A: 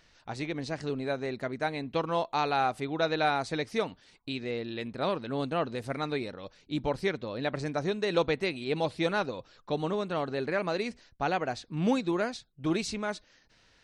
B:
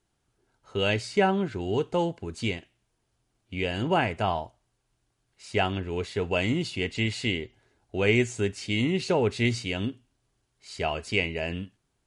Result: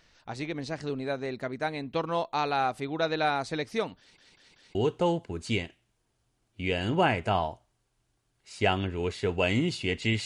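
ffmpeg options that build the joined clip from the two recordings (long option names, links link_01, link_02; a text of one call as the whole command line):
ffmpeg -i cue0.wav -i cue1.wav -filter_complex "[0:a]apad=whole_dur=10.25,atrim=end=10.25,asplit=4[link_01][link_02][link_03][link_04];[link_01]atrim=end=4.182[link_05];[link_02]atrim=start=3.988:end=4.182[link_06];[link_03]atrim=start=3.988:end=4.182[link_07];[link_04]atrim=start=3.988:end=4.182[link_08];[1:a]atrim=start=1.678:end=7.18[link_09];[link_05][link_06]acrossfade=duration=0.004:curve1=hsin:curve2=hsin[link_10];[link_10][link_07]acrossfade=duration=0.004:curve1=hsin:curve2=hsin[link_11];[link_11][link_08]acrossfade=duration=0.004:curve1=hsin:curve2=hsin[link_12];[link_12][link_09]acrossfade=duration=0.004:curve1=hsin:curve2=hsin" out.wav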